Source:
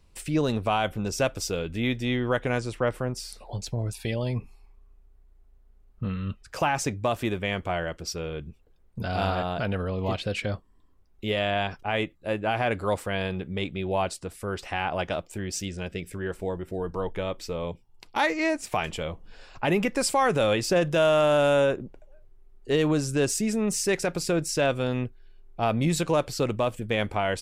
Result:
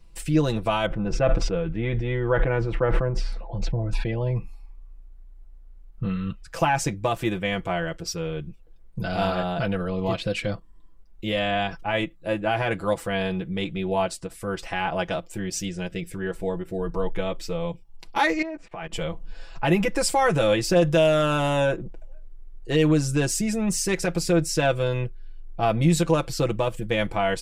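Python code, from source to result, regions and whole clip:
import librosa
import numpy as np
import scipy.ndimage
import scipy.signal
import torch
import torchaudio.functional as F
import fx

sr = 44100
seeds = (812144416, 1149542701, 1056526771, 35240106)

y = fx.chain(x, sr, fx.lowpass(hz=1800.0, slope=12),
    fx.sustainer(db_per_s=43.0), at=(0.86, 4.36))
y = fx.chain(y, sr, fx.lowpass(hz=2200.0, slope=12),
    fx.peak_eq(hz=60.0, db=-10.0, octaves=1.6),
    fx.level_steps(step_db=18), at=(18.42, 18.92))
y = fx.low_shelf(y, sr, hz=73.0, db=9.0)
y = y + 0.73 * np.pad(y, (int(6.0 * sr / 1000.0), 0))[:len(y)]
y = fx.end_taper(y, sr, db_per_s=440.0)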